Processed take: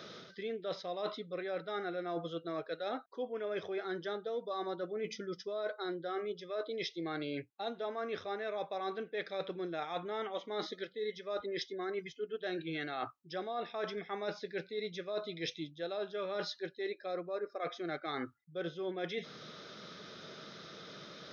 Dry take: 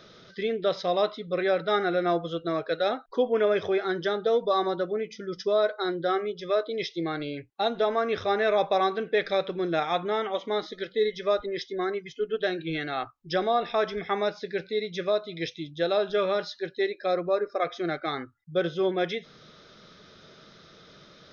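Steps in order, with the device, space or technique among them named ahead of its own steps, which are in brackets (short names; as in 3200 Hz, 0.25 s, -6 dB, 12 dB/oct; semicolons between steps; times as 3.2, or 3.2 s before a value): compression on the reversed sound (reverse; compressor 10:1, threshold -38 dBFS, peak gain reduction 19 dB; reverse); HPF 140 Hz; gain +2.5 dB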